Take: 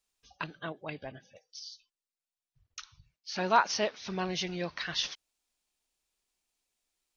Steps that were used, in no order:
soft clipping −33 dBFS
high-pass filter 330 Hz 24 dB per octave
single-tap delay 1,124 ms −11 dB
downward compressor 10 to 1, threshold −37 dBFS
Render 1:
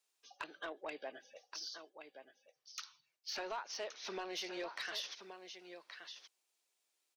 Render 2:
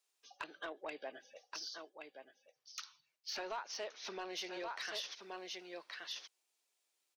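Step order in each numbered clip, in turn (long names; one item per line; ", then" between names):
high-pass filter, then downward compressor, then single-tap delay, then soft clipping
single-tap delay, then downward compressor, then high-pass filter, then soft clipping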